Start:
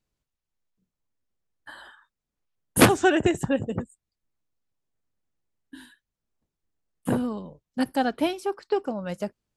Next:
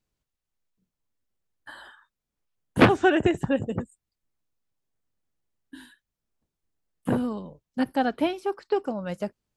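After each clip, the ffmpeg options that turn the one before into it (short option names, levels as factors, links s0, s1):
-filter_complex "[0:a]acrossover=split=3800[s0][s1];[s1]acompressor=threshold=0.00251:ratio=4:attack=1:release=60[s2];[s0][s2]amix=inputs=2:normalize=0"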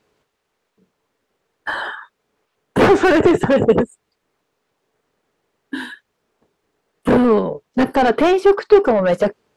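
-filter_complex "[0:a]asplit=2[s0][s1];[s1]highpass=f=720:p=1,volume=50.1,asoftclip=type=tanh:threshold=0.631[s2];[s0][s2]amix=inputs=2:normalize=0,lowpass=f=1200:p=1,volume=0.501,equalizer=f=430:t=o:w=0.32:g=8,volume=0.891"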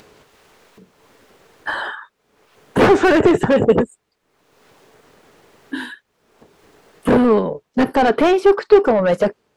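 -af "acompressor=mode=upward:threshold=0.02:ratio=2.5"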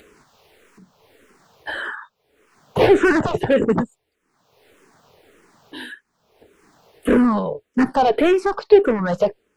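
-filter_complex "[0:a]asplit=2[s0][s1];[s1]afreqshift=-1.7[s2];[s0][s2]amix=inputs=2:normalize=1"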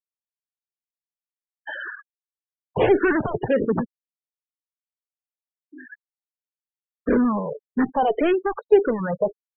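-af "afftfilt=real='re*gte(hypot(re,im),0.0891)':imag='im*gte(hypot(re,im),0.0891)':win_size=1024:overlap=0.75,aresample=8000,aresample=44100,volume=0.631"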